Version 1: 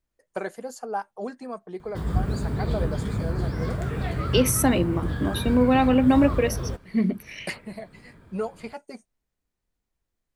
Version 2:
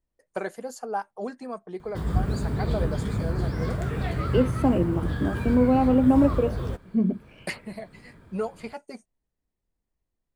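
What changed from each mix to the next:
second voice: add boxcar filter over 23 samples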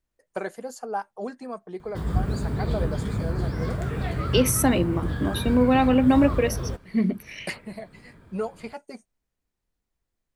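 second voice: remove boxcar filter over 23 samples

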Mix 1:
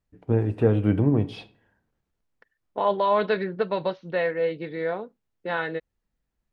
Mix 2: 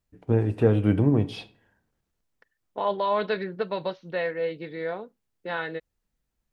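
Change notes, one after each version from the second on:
second voice -3.5 dB; master: add treble shelf 4.5 kHz +8 dB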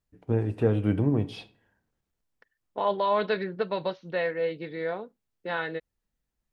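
first voice -3.5 dB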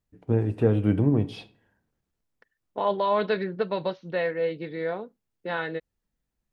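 master: add peaking EQ 190 Hz +3 dB 2.9 oct

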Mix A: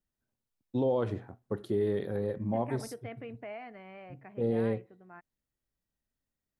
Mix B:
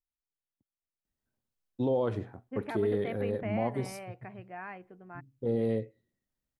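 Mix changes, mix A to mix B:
first voice: entry +1.05 s; second voice +4.5 dB

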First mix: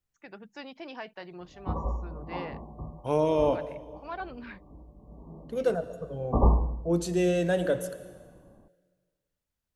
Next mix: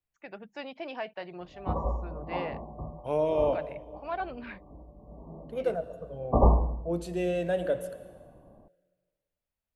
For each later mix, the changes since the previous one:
second voice -6.5 dB; master: add fifteen-band graphic EQ 630 Hz +7 dB, 2.5 kHz +4 dB, 6.3 kHz -7 dB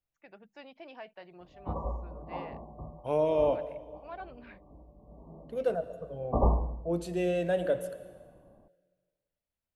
first voice -9.5 dB; background -4.5 dB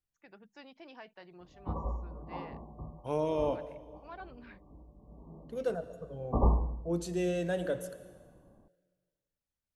master: add fifteen-band graphic EQ 630 Hz -7 dB, 2.5 kHz -4 dB, 6.3 kHz +7 dB

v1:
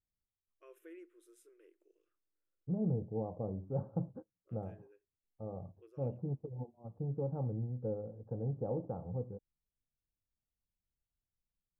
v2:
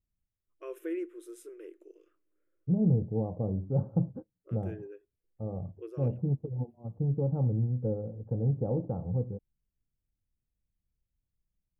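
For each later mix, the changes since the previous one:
first voice +12.0 dB; master: add bass shelf 410 Hz +10.5 dB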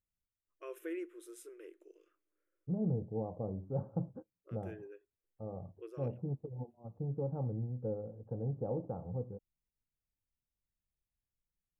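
master: add bass shelf 410 Hz -10.5 dB

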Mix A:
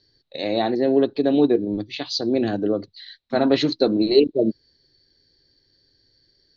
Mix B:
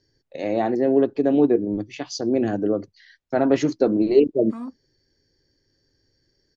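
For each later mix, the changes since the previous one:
second voice: entry +1.20 s; master: remove resonant low-pass 4 kHz, resonance Q 9.6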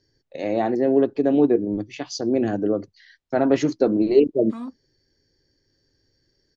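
second voice: add peaking EQ 4 kHz +10 dB 0.93 oct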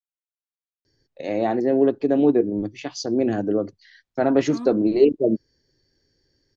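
first voice: entry +0.85 s

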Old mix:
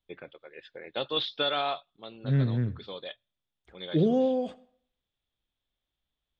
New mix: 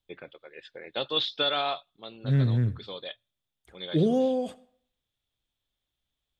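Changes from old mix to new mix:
second voice: add peaking EQ 110 Hz +5.5 dB 0.4 oct; master: remove distance through air 120 m

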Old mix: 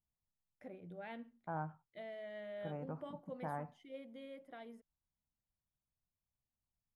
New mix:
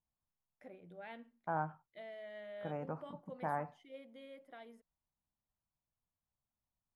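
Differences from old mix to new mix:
second voice +6.5 dB; master: add bass shelf 290 Hz -8 dB

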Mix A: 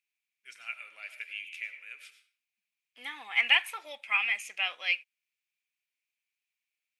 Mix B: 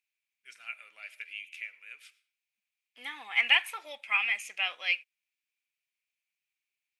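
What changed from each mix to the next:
first voice: send -11.0 dB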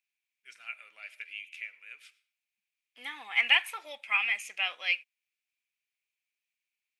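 first voice: add treble shelf 9.5 kHz -5.5 dB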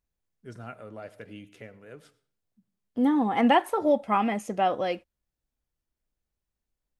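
master: remove resonant high-pass 2.4 kHz, resonance Q 7.7

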